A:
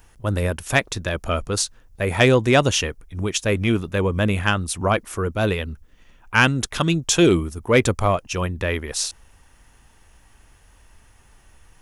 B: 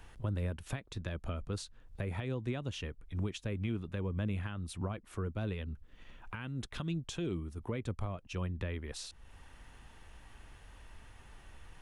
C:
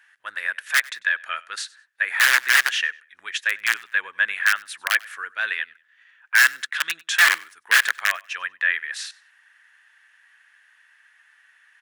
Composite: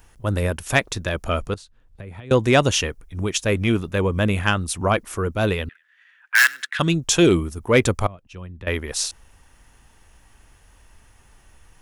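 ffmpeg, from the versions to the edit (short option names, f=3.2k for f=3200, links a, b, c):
-filter_complex "[1:a]asplit=2[a][b];[0:a]asplit=4[c][d][e][f];[c]atrim=end=1.542[g];[a]atrim=start=1.538:end=2.312[h];[d]atrim=start=2.308:end=5.692[i];[2:a]atrim=start=5.688:end=6.792[j];[e]atrim=start=6.788:end=8.072[k];[b]atrim=start=8.068:end=8.672[l];[f]atrim=start=8.668[m];[g][h]acrossfade=d=0.004:c1=hsin:c2=hsin[n];[n][i]acrossfade=d=0.004:c1=hsin:c2=hsin[o];[o][j]acrossfade=d=0.004:c1=hsin:c2=hsin[p];[p][k]acrossfade=d=0.004:c1=hsin:c2=hsin[q];[q][l]acrossfade=d=0.004:c1=hsin:c2=hsin[r];[r][m]acrossfade=d=0.004:c1=hsin:c2=hsin"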